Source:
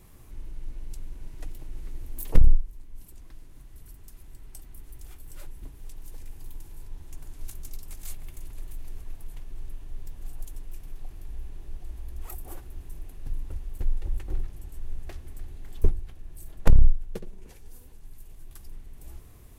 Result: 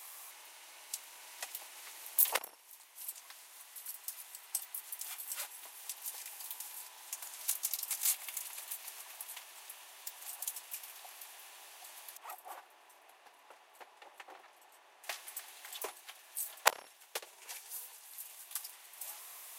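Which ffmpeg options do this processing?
-filter_complex "[0:a]asettb=1/sr,asplit=3[s0][s1][s2];[s0]atrim=end=12.174[s3];[s1]atrim=start=12.17:end=15.04,asetpts=PTS-STARTPTS,afade=t=in:d=0.004:c=qsin,afade=t=out:st=2.866:d=0.004:c=qsin,lowpass=f=1000:p=1[s4];[s2]atrim=start=15.036[s5];[s3][s4]acrossfade=d=0.004:c1=hsin:c2=qsin[s6];[s6][s5]acrossfade=d=0.004:c1=qsin:c2=hsin,highpass=f=830:w=0.5412,highpass=f=830:w=1.3066,equalizer=f=1400:t=o:w=1.3:g=-5.5,volume=4.22"

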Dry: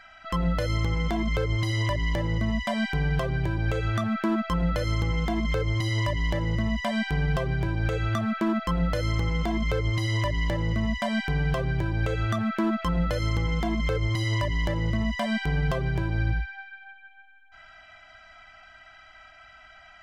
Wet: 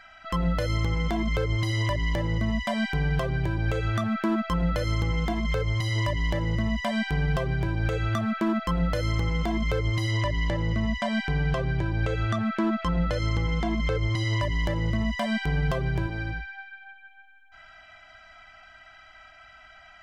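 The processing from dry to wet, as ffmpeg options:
-filter_complex "[0:a]asettb=1/sr,asplit=3[s0][s1][s2];[s0]atrim=end=5.324[s3];[s1]atrim=start=5.32:end=5.96,asetpts=PTS-STARTPTS,afade=t=in:d=0.004:c=qsin,afade=t=out:st=0.636:d=0.004:c=qsin,equalizer=f=300:t=o:w=0.31:g=-11[s4];[s2]atrim=start=5.956[s5];[s3][s4]acrossfade=d=0.004:c1=hsin:c2=qsin[s6];[s6][s5]acrossfade=d=0.004:c1=qsin:c2=hsin,asettb=1/sr,asplit=3[s7][s8][s9];[s7]atrim=end=10.114[s10];[s8]atrim=start=10.11:end=14.42,asetpts=PTS-STARTPTS,afade=t=in:d=0.004:c=qsin,afade=t=out:st=4.306:d=0.004:c=qsin,lowpass=7700[s11];[s9]atrim=start=14.416[s12];[s10][s11]acrossfade=d=0.004:c1=hsin:c2=qsin[s13];[s13][s12]acrossfade=d=0.004:c1=qsin:c2=hsin,asettb=1/sr,asplit=3[s14][s15][s16];[s14]atrim=end=16.074[s17];[s15]atrim=start=16.07:end=16.81,asetpts=PTS-STARTPTS,afade=t=in:d=0.004:c=qsin,afade=t=out:st=0.736:d=0.004:c=qsin,equalizer=f=69:w=0.56:g=-9.5[s18];[s16]atrim=start=16.806[s19];[s17][s18]acrossfade=d=0.004:c1=hsin:c2=qsin[s20];[s20][s19]acrossfade=d=0.004:c1=qsin:c2=hsin"

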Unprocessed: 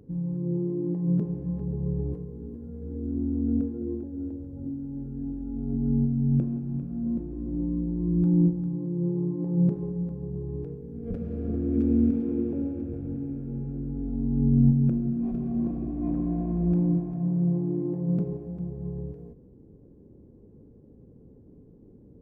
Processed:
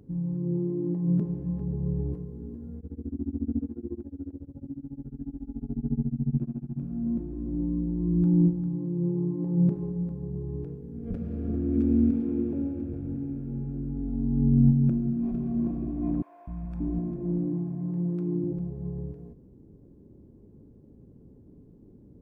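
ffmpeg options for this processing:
-filter_complex "[0:a]asplit=3[s0][s1][s2];[s0]afade=t=out:st=2.79:d=0.02[s3];[s1]tremolo=f=14:d=0.97,afade=t=in:st=2.79:d=0.02,afade=t=out:st=6.79:d=0.02[s4];[s2]afade=t=in:st=6.79:d=0.02[s5];[s3][s4][s5]amix=inputs=3:normalize=0,asettb=1/sr,asplit=3[s6][s7][s8];[s6]atrim=end=16.224[s9];[s7]atrim=start=16.22:end=18.59,asetpts=PTS-STARTPTS,afade=t=in:d=0.004:c=qsin,afade=t=out:st=2.366:d=0.004:c=qsin,acrossover=split=160|720[s10][s11][s12];[s10]adelay=250[s13];[s11]adelay=580[s14];[s13][s14][s12]amix=inputs=3:normalize=0,atrim=end_sample=104517[s15];[s8]atrim=start=18.586[s16];[s9][s15]acrossfade=d=0.004:c1=hsin:c2=qsin[s17];[s17][s16]acrossfade=d=0.004:c1=qsin:c2=hsin,equalizer=f=480:t=o:w=0.27:g=-7,bandreject=f=760:w=21"

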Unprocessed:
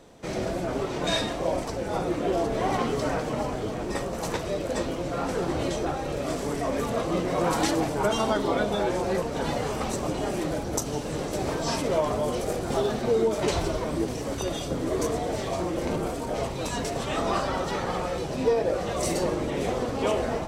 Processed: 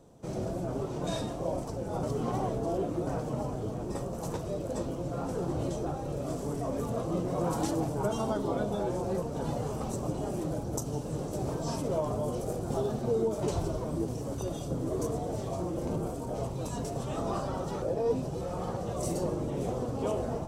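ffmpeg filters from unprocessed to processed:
-filter_complex "[0:a]asplit=5[s0][s1][s2][s3][s4];[s0]atrim=end=2.032[s5];[s1]atrim=start=2.028:end=3.072,asetpts=PTS-STARTPTS,areverse[s6];[s2]atrim=start=3.068:end=17.822[s7];[s3]atrim=start=17.818:end=18.772,asetpts=PTS-STARTPTS,areverse[s8];[s4]atrim=start=18.768[s9];[s5][s6]acrossfade=d=0.004:c1=hsin:c2=hsin[s10];[s10][s7]acrossfade=d=0.004:c1=hsin:c2=hsin[s11];[s11][s8]acrossfade=d=0.004:c1=hsin:c2=hsin[s12];[s12][s9]acrossfade=d=0.004:c1=hsin:c2=hsin,equalizer=f=125:t=o:w=1:g=7,equalizer=f=2000:t=o:w=1:g=-12,equalizer=f=4000:t=o:w=1:g=-6,volume=0.531"

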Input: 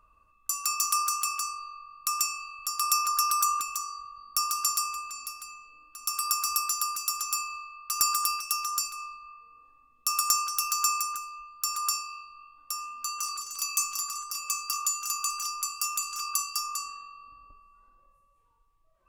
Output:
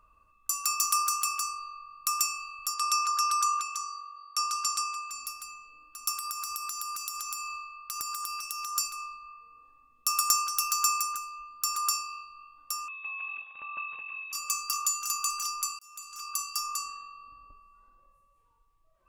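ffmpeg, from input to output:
-filter_complex "[0:a]asettb=1/sr,asplit=3[s0][s1][s2];[s0]atrim=end=2.744[s3];[s1]atrim=start=2.74:end=5.11,asetpts=PTS-STARTPTS,afade=t=in:d=0.004:c=qsin,afade=t=out:st=2.366:d=0.004:c=qsin,highpass=630,lowpass=7100[s4];[s2]atrim=start=5.106[s5];[s3][s4]acrossfade=d=0.004:c1=hsin:c2=qsin[s6];[s6][s5]acrossfade=d=0.004:c1=qsin:c2=hsin,asettb=1/sr,asplit=3[s7][s8][s9];[s7]atrim=end=6.134[s10];[s8]atrim=start=6.13:end=8.76,asetpts=PTS-STARTPTS,afade=t=in:d=0.004:c=qsin,afade=t=out:st=2.626:d=0.004:c=qsin,acompressor=threshold=0.0251:ratio=6:attack=3.2:release=140:knee=1:detection=peak[s11];[s9]atrim=start=8.756[s12];[s10][s11]acrossfade=d=0.004:c1=hsin:c2=qsin[s13];[s13][s12]acrossfade=d=0.004:c1=qsin:c2=hsin,asettb=1/sr,asplit=3[s14][s15][s16];[s14]atrim=end=11.404[s17];[s15]atrim=start=11.4:end=12.24,asetpts=PTS-STARTPTS,afade=t=in:d=0.004:c=qsin,afade=t=out:st=0.836:d=0.004:c=qsin,equalizer=f=370:t=o:w=1.5:g=7[s18];[s16]atrim=start=12.236[s19];[s17][s18]acrossfade=d=0.004:c1=hsin:c2=qsin[s20];[s20][s19]acrossfade=d=0.004:c1=qsin:c2=hsin,asettb=1/sr,asplit=3[s21][s22][s23];[s21]atrim=end=12.884[s24];[s22]atrim=start=12.88:end=14.33,asetpts=PTS-STARTPTS,afade=t=in:d=0.004:c=qsin,afade=t=out:st=1.446:d=0.004:c=qsin,lowpass=f=3200:t=q:w=0.5098,lowpass=f=3200:t=q:w=0.6013,lowpass=f=3200:t=q:w=0.9,lowpass=f=3200:t=q:w=2.563,afreqshift=-3800[s25];[s23]atrim=start=14.326[s26];[s24][s25]acrossfade=d=0.004:c1=hsin:c2=qsin[s27];[s27][s26]acrossfade=d=0.004:c1=qsin:c2=hsin,asplit=2[s28][s29];[s28]atrim=end=15.79,asetpts=PTS-STARTPTS,afade=t=out:st=15.786:d=0.004:c=hsin[s30];[s29]atrim=start=15.79,asetpts=PTS-STARTPTS,afade=t=in:d=0.91[s31];[s30][s31]concat=n=2:v=0:a=1"

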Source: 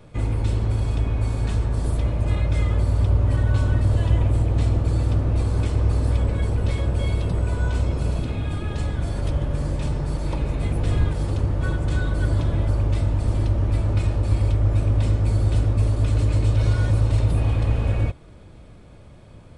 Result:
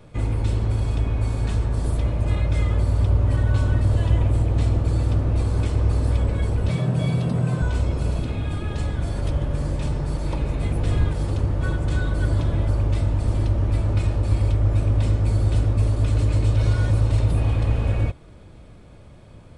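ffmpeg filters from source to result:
-filter_complex "[0:a]asettb=1/sr,asplit=3[s0][s1][s2];[s0]atrim=end=6.694[s3];[s1]atrim=start=6.69:end=7.62,asetpts=PTS-STARTPTS,afade=t=in:d=0.004:c=qsin,afade=t=out:st=0.926:d=0.004:c=qsin,afreqshift=63[s4];[s2]atrim=start=7.616[s5];[s3][s4]acrossfade=d=0.004:c1=hsin:c2=qsin[s6];[s6][s5]acrossfade=d=0.004:c1=qsin:c2=hsin"

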